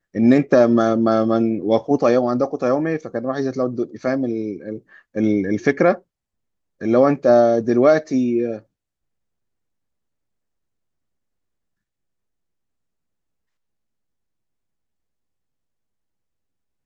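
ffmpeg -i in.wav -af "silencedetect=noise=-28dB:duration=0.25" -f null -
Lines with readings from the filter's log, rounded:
silence_start: 4.77
silence_end: 5.16 | silence_duration: 0.39
silence_start: 5.96
silence_end: 6.81 | silence_duration: 0.86
silence_start: 8.58
silence_end: 16.85 | silence_duration: 8.27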